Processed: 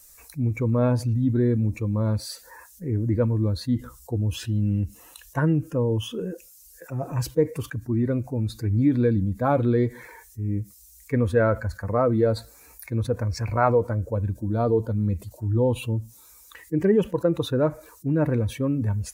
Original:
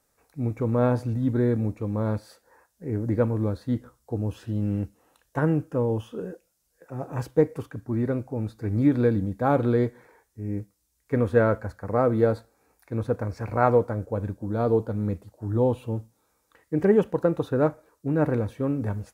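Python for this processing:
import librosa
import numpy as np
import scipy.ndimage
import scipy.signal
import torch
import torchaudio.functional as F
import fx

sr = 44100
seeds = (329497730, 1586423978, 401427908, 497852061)

y = fx.bin_expand(x, sr, power=1.5)
y = fx.notch(y, sr, hz=790.0, q=12.0)
y = fx.env_flatten(y, sr, amount_pct=50)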